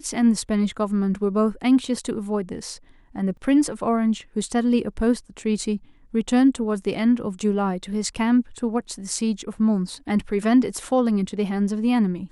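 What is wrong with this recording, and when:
3.37 gap 2.9 ms

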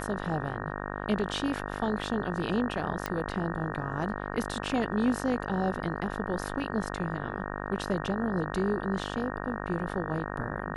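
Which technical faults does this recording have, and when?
buzz 50 Hz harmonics 37 -36 dBFS
3.06 pop -15 dBFS

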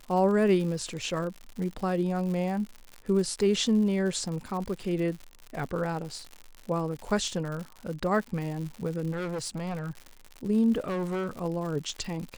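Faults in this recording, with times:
crackle 130/s -35 dBFS
9.11–10.07 clipped -29.5 dBFS
10.84–11.29 clipped -27.5 dBFS

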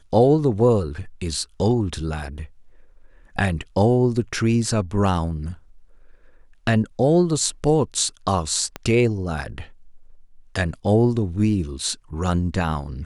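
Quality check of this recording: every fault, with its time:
8.76 pop -14 dBFS

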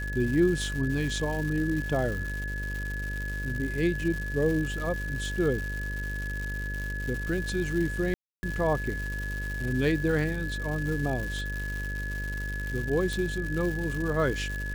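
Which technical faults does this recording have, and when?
buzz 50 Hz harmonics 12 -34 dBFS
crackle 310/s -33 dBFS
tone 1700 Hz -35 dBFS
8.14–8.43 gap 0.29 s
13.13 pop

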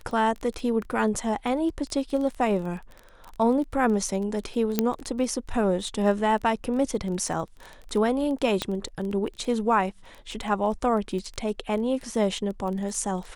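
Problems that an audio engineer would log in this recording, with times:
crackle 14/s -31 dBFS
4.79 pop -7 dBFS
8.62 pop -11 dBFS

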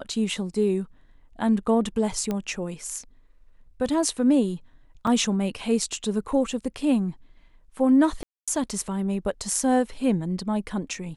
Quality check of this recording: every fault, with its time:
2.31 pop -15 dBFS
5.07 gap 3.3 ms
8.23–8.48 gap 0.246 s

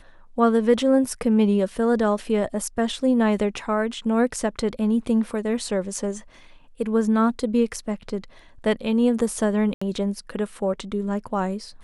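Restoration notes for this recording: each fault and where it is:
9.74–9.81 gap 75 ms

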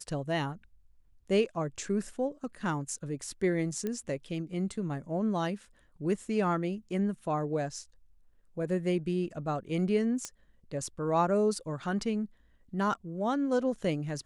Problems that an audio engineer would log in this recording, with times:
3.87 pop -21 dBFS
10.25 pop -20 dBFS

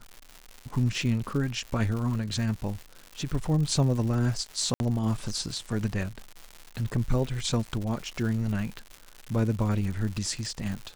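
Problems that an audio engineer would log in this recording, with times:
crackle 210/s -34 dBFS
4.74–4.8 gap 61 ms

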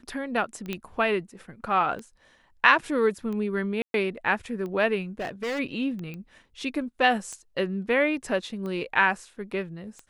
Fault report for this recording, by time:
tick 45 rpm -25 dBFS
0.73 pop -16 dBFS
3.82–3.94 gap 0.122 s
5.19–5.6 clipped -27 dBFS
6.14 pop -26 dBFS

